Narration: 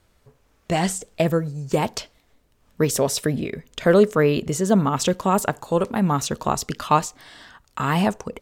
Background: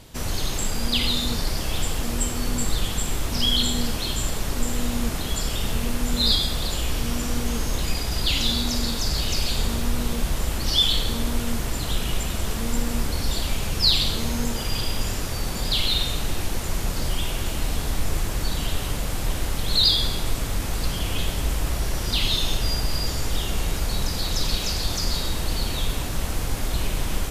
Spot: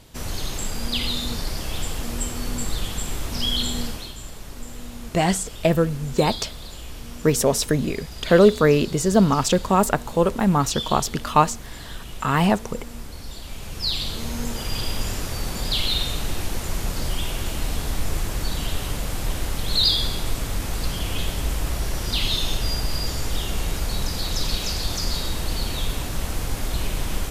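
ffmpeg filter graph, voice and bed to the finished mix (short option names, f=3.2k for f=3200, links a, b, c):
-filter_complex "[0:a]adelay=4450,volume=1.5dB[a];[1:a]volume=8.5dB,afade=t=out:st=3.8:d=0.33:silence=0.354813,afade=t=in:st=13.42:d=1.45:silence=0.281838[b];[a][b]amix=inputs=2:normalize=0"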